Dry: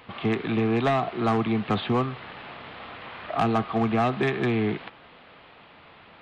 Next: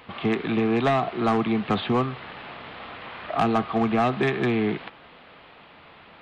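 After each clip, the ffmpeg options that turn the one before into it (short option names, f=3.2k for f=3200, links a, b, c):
-af "equalizer=f=110:w=7.8:g=-6.5,volume=1.5dB"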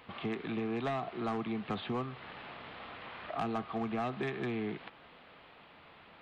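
-af "acompressor=threshold=-34dB:ratio=1.5,volume=-7.5dB"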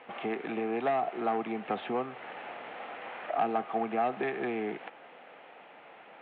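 -af "highpass=290,equalizer=f=520:t=q:w=4:g=4,equalizer=f=770:t=q:w=4:g=6,equalizer=f=1.1k:t=q:w=4:g=-5,lowpass=f=2.8k:w=0.5412,lowpass=f=2.8k:w=1.3066,volume=4.5dB"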